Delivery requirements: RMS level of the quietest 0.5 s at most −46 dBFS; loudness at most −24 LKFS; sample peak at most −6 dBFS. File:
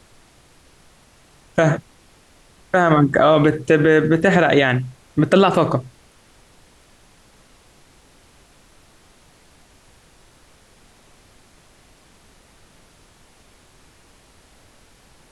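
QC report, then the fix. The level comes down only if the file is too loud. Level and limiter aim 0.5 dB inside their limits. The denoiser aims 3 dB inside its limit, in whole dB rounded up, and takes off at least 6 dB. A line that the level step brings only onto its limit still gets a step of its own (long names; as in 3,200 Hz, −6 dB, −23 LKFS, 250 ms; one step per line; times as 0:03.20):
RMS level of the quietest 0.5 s −52 dBFS: in spec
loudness −16.5 LKFS: out of spec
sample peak −4.0 dBFS: out of spec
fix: level −8 dB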